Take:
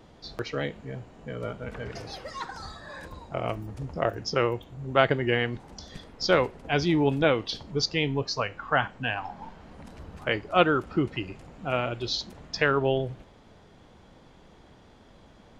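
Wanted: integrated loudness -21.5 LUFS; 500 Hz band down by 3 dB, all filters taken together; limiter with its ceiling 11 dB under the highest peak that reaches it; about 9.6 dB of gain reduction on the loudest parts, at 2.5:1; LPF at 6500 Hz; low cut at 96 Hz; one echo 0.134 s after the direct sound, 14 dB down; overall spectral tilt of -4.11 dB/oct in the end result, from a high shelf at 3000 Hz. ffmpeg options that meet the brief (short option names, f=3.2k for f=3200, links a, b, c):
-af "highpass=96,lowpass=6.5k,equalizer=f=500:t=o:g=-3.5,highshelf=f=3k:g=-4,acompressor=threshold=-32dB:ratio=2.5,alimiter=level_in=2.5dB:limit=-24dB:level=0:latency=1,volume=-2.5dB,aecho=1:1:134:0.2,volume=18dB"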